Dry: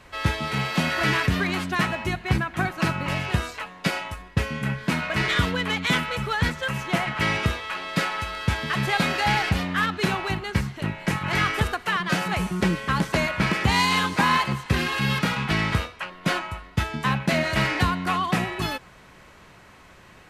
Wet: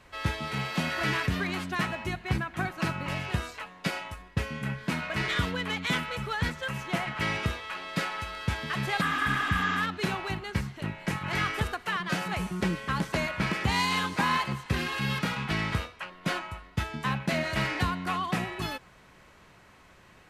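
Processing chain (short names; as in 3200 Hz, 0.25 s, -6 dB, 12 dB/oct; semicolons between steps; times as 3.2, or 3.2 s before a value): spectral repair 9.04–9.75, 230–7500 Hz after; gain -6 dB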